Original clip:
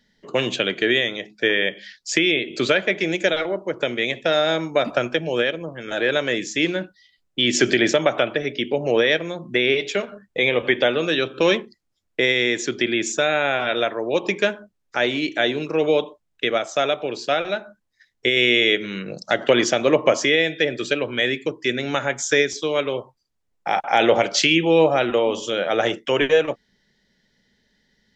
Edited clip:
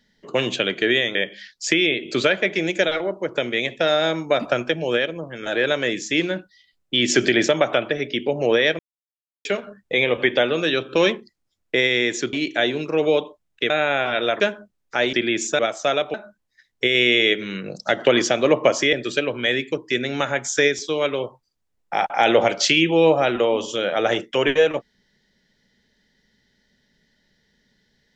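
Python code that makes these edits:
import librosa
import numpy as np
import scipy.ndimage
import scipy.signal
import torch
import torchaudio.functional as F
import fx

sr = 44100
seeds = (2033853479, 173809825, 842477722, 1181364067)

y = fx.edit(x, sr, fx.cut(start_s=1.15, length_s=0.45),
    fx.silence(start_s=9.24, length_s=0.66),
    fx.swap(start_s=12.78, length_s=0.46, other_s=15.14, other_length_s=1.37),
    fx.cut(start_s=13.94, length_s=0.47),
    fx.cut(start_s=17.06, length_s=0.5),
    fx.cut(start_s=20.35, length_s=0.32), tone=tone)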